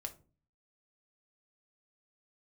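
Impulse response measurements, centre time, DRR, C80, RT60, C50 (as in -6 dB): 6 ms, 4.0 dB, 21.5 dB, 0.40 s, 15.5 dB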